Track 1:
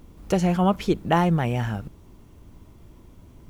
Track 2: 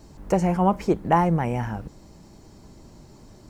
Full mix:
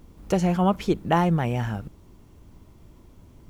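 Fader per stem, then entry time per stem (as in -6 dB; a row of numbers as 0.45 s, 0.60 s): -2.0 dB, -17.5 dB; 0.00 s, 0.00 s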